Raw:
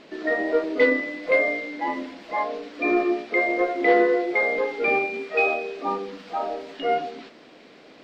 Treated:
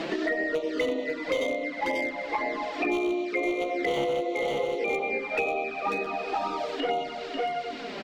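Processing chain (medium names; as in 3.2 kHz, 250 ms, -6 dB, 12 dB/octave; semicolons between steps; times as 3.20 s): thinning echo 93 ms, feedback 53%, high-pass 250 Hz, level -4 dB; wavefolder -13 dBFS; delay 541 ms -5.5 dB; touch-sensitive flanger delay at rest 6.5 ms, full sweep at -18 dBFS; three bands compressed up and down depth 100%; trim -5.5 dB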